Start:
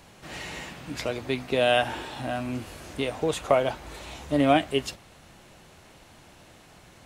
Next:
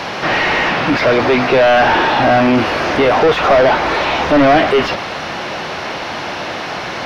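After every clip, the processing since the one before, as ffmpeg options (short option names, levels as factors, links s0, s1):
-filter_complex "[0:a]asplit=2[s0][s1];[s1]highpass=f=720:p=1,volume=70.8,asoftclip=type=tanh:threshold=0.447[s2];[s0][s2]amix=inputs=2:normalize=0,lowpass=f=2200:p=1,volume=0.501,acrossover=split=2700[s3][s4];[s4]acompressor=threshold=0.0141:ratio=4:attack=1:release=60[s5];[s3][s5]amix=inputs=2:normalize=0,highshelf=f=6500:t=q:w=3:g=-6.5,volume=1.68"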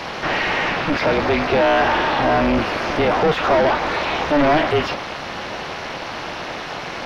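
-af "tremolo=f=300:d=0.824,volume=0.794"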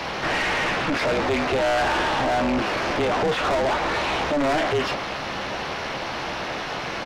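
-filter_complex "[0:a]asplit=2[s0][s1];[s1]adelay=15,volume=0.282[s2];[s0][s2]amix=inputs=2:normalize=0,acrossover=split=170[s3][s4];[s3]acompressor=threshold=0.0158:ratio=6[s5];[s4]asoftclip=type=tanh:threshold=0.119[s6];[s5][s6]amix=inputs=2:normalize=0"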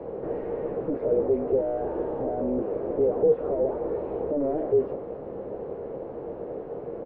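-af "lowpass=f=460:t=q:w=4.9,volume=0.398"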